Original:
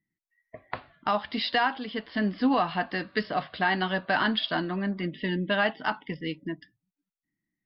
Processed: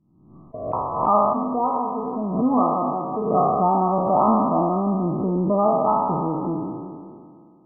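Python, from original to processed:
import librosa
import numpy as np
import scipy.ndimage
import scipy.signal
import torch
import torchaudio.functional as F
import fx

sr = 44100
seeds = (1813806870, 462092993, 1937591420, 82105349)

y = fx.spec_trails(x, sr, decay_s=2.19)
y = fx.comb_fb(y, sr, f0_hz=50.0, decay_s=0.2, harmonics='odd', damping=0.0, mix_pct=70, at=(1.33, 3.34))
y = fx.brickwall_lowpass(y, sr, high_hz=1300.0)
y = fx.pre_swell(y, sr, db_per_s=63.0)
y = y * librosa.db_to_amplitude(5.5)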